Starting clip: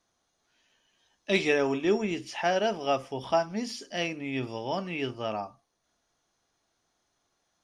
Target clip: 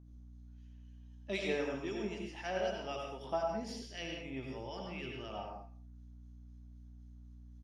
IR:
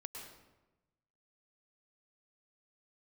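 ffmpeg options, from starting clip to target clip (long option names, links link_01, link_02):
-filter_complex "[0:a]asplit=2[link_01][link_02];[link_02]adelay=160,highpass=300,lowpass=3400,asoftclip=type=hard:threshold=-20dB,volume=-20dB[link_03];[link_01][link_03]amix=inputs=2:normalize=0,acrossover=split=1500[link_04][link_05];[link_04]aeval=exprs='val(0)*(1-0.7/2+0.7/2*cos(2*PI*3.9*n/s))':channel_layout=same[link_06];[link_05]aeval=exprs='val(0)*(1-0.7/2-0.7/2*cos(2*PI*3.9*n/s))':channel_layout=same[link_07];[link_06][link_07]amix=inputs=2:normalize=0,aeval=exprs='val(0)+0.00562*(sin(2*PI*60*n/s)+sin(2*PI*2*60*n/s)/2+sin(2*PI*3*60*n/s)/3+sin(2*PI*4*60*n/s)/4+sin(2*PI*5*60*n/s)/5)':channel_layout=same[link_08];[1:a]atrim=start_sample=2205,afade=type=out:start_time=0.34:duration=0.01,atrim=end_sample=15435,asetrate=57330,aresample=44100[link_09];[link_08][link_09]afir=irnorm=-1:irlink=0,volume=-1.5dB"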